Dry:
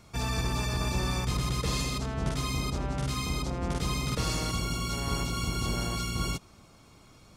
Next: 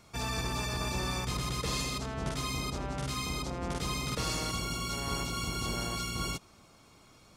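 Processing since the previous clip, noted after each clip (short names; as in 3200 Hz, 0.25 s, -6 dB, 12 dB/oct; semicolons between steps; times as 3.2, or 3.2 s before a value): low shelf 220 Hz -6 dB; gain -1 dB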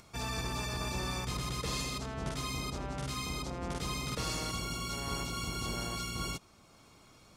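upward compressor, threshold -51 dBFS; gain -2.5 dB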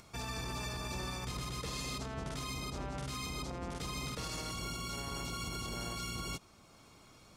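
limiter -30.5 dBFS, peak gain reduction 9 dB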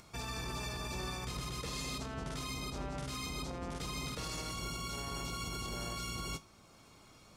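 resonator 53 Hz, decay 0.21 s, mix 60%; gain +3 dB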